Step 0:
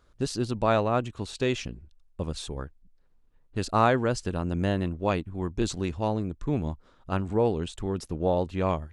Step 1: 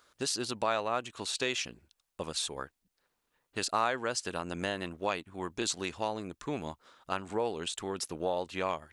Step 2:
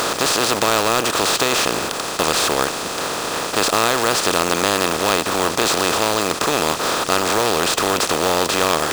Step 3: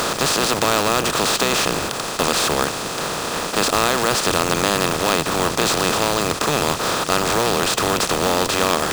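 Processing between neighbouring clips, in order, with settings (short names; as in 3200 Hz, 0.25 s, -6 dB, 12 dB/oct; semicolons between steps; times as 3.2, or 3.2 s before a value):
HPF 1200 Hz 6 dB/oct; high shelf 8100 Hz +4.5 dB; compressor 2:1, threshold -38 dBFS, peak gain reduction 10 dB; gain +6.5 dB
per-bin compression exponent 0.2; in parallel at -9.5 dB: wrapped overs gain 19.5 dB; on the sum: companded quantiser 4-bit; gain +5 dB
octaver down 1 oct, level -2 dB; gain -1 dB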